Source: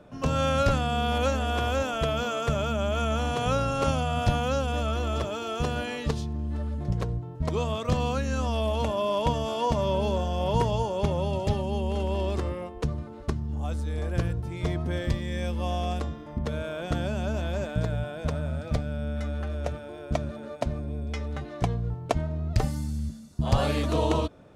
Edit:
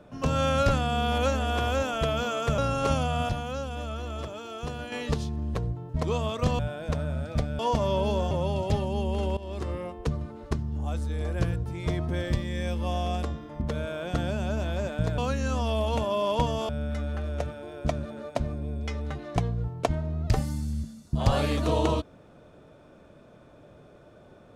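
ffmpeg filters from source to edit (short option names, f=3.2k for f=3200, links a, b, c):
-filter_complex "[0:a]asplit=11[a][b][c][d][e][f][g][h][i][j][k];[a]atrim=end=2.582[l];[b]atrim=start=3.548:end=4.262[m];[c]atrim=start=4.258:end=5.892,asetpts=PTS-STARTPTS,volume=-6.5dB[n];[d]atrim=start=5.888:end=6.522[o];[e]atrim=start=7.008:end=8.052[p];[f]atrim=start=17.948:end=18.952[q];[g]atrim=start=9.558:end=10.282[r];[h]atrim=start=11.078:end=12.14,asetpts=PTS-STARTPTS,afade=t=out:st=1.058:d=0.004:c=hsin:silence=0.149624[s];[i]atrim=start=12.14:end=17.952,asetpts=PTS-STARTPTS,afade=t=in:d=0.43:silence=0.149624[t];[j]atrim=start=8.048:end=9.562[u];[k]atrim=start=18.948[v];[l][m]acrossfade=d=0.004:c1=hsin:c2=hsin[w];[w][n]acrossfade=d=0.004:c1=hsin:c2=hsin[x];[x][o]acrossfade=d=0.004:c1=hsin:c2=hsin[y];[y][p]acrossfade=d=0.004:c1=hsin:c2=hsin[z];[z][q]acrossfade=d=0.004:c1=hsin:c2=hsin[aa];[aa][r]acrossfade=d=0.004:c1=hsin:c2=hsin[ab];[s][t]concat=n=2:v=0:a=1[ac];[ab][ac]acrossfade=d=0.004:c1=hsin:c2=hsin[ad];[ad][u]acrossfade=d=0.004:c1=hsin:c2=hsin[ae];[ae][v]acrossfade=d=0.004:c1=hsin:c2=hsin"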